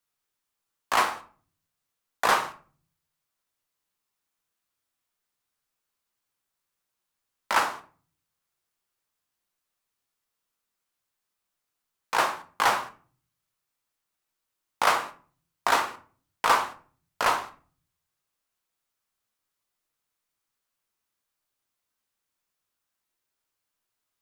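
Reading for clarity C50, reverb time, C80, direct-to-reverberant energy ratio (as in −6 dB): 13.5 dB, 0.40 s, 19.0 dB, 6.5 dB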